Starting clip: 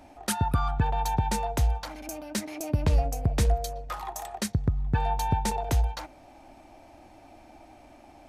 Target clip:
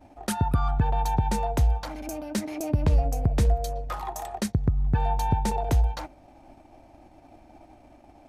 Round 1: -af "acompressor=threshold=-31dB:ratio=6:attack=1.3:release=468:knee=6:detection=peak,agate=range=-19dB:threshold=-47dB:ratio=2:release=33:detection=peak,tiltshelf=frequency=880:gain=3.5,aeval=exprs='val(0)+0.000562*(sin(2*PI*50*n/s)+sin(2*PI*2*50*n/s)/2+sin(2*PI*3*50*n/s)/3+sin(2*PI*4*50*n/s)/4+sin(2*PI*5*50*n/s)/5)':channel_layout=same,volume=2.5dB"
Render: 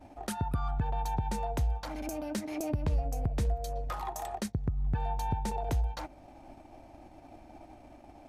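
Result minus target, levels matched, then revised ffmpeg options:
downward compressor: peak gain reduction +8.5 dB
-af "acompressor=threshold=-20.5dB:ratio=6:attack=1.3:release=468:knee=6:detection=peak,agate=range=-19dB:threshold=-47dB:ratio=2:release=33:detection=peak,tiltshelf=frequency=880:gain=3.5,aeval=exprs='val(0)+0.000562*(sin(2*PI*50*n/s)+sin(2*PI*2*50*n/s)/2+sin(2*PI*3*50*n/s)/3+sin(2*PI*4*50*n/s)/4+sin(2*PI*5*50*n/s)/5)':channel_layout=same,volume=2.5dB"

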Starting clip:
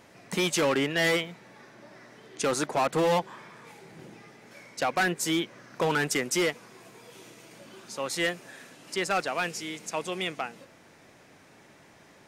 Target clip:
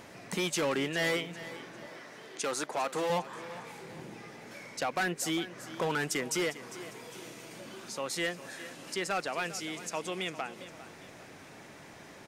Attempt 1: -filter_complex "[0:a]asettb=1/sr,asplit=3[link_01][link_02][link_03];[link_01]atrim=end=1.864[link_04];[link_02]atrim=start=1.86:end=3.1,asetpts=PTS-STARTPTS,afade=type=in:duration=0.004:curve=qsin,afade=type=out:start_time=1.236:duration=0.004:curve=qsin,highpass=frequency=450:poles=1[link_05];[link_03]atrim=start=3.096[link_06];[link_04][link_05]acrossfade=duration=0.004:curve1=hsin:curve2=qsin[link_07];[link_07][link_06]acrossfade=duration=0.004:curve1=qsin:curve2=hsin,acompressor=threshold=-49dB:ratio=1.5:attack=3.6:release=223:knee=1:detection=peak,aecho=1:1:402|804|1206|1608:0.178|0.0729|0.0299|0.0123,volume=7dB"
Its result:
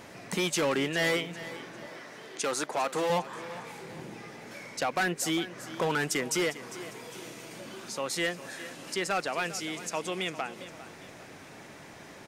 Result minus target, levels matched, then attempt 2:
downward compressor: peak gain reduction −2.5 dB
-filter_complex "[0:a]asettb=1/sr,asplit=3[link_01][link_02][link_03];[link_01]atrim=end=1.864[link_04];[link_02]atrim=start=1.86:end=3.1,asetpts=PTS-STARTPTS,afade=type=in:duration=0.004:curve=qsin,afade=type=out:start_time=1.236:duration=0.004:curve=qsin,highpass=frequency=450:poles=1[link_05];[link_03]atrim=start=3.096[link_06];[link_04][link_05]acrossfade=duration=0.004:curve1=hsin:curve2=qsin[link_07];[link_07][link_06]acrossfade=duration=0.004:curve1=qsin:curve2=hsin,acompressor=threshold=-57dB:ratio=1.5:attack=3.6:release=223:knee=1:detection=peak,aecho=1:1:402|804|1206|1608:0.178|0.0729|0.0299|0.0123,volume=7dB"

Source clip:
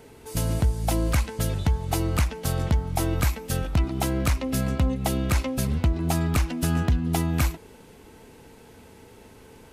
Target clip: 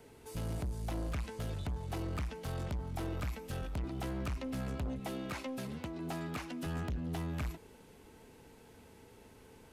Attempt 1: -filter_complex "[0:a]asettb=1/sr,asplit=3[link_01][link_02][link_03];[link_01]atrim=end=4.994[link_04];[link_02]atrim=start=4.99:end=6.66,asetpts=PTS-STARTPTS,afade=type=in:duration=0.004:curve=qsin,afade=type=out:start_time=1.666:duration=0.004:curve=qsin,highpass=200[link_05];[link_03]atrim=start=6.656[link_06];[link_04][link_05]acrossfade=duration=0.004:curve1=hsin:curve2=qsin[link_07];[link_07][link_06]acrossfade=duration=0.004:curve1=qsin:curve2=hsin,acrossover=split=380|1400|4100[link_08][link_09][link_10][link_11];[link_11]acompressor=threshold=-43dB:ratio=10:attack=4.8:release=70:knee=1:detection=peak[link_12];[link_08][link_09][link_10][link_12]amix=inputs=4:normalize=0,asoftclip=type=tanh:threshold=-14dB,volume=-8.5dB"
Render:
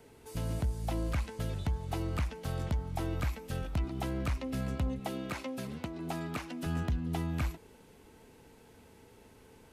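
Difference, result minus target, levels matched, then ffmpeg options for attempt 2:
soft clipping: distortion −13 dB
-filter_complex "[0:a]asettb=1/sr,asplit=3[link_01][link_02][link_03];[link_01]atrim=end=4.994[link_04];[link_02]atrim=start=4.99:end=6.66,asetpts=PTS-STARTPTS,afade=type=in:duration=0.004:curve=qsin,afade=type=out:start_time=1.666:duration=0.004:curve=qsin,highpass=200[link_05];[link_03]atrim=start=6.656[link_06];[link_04][link_05]acrossfade=duration=0.004:curve1=hsin:curve2=qsin[link_07];[link_07][link_06]acrossfade=duration=0.004:curve1=qsin:curve2=hsin,acrossover=split=380|1400|4100[link_08][link_09][link_10][link_11];[link_11]acompressor=threshold=-43dB:ratio=10:attack=4.8:release=70:knee=1:detection=peak[link_12];[link_08][link_09][link_10][link_12]amix=inputs=4:normalize=0,asoftclip=type=tanh:threshold=-24.5dB,volume=-8.5dB"

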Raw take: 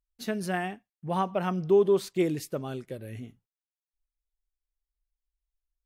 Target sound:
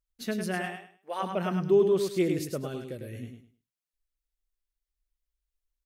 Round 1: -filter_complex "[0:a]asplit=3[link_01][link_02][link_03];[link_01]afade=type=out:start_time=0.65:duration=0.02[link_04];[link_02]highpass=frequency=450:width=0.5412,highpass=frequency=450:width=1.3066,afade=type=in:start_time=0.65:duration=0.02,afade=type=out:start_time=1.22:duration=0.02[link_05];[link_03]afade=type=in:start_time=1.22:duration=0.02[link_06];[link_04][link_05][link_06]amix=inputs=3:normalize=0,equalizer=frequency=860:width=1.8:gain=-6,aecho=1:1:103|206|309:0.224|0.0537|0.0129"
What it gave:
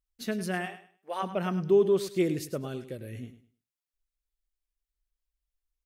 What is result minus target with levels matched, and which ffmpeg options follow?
echo-to-direct −7 dB
-filter_complex "[0:a]asplit=3[link_01][link_02][link_03];[link_01]afade=type=out:start_time=0.65:duration=0.02[link_04];[link_02]highpass=frequency=450:width=0.5412,highpass=frequency=450:width=1.3066,afade=type=in:start_time=0.65:duration=0.02,afade=type=out:start_time=1.22:duration=0.02[link_05];[link_03]afade=type=in:start_time=1.22:duration=0.02[link_06];[link_04][link_05][link_06]amix=inputs=3:normalize=0,equalizer=frequency=860:width=1.8:gain=-6,aecho=1:1:103|206|309:0.501|0.12|0.0289"

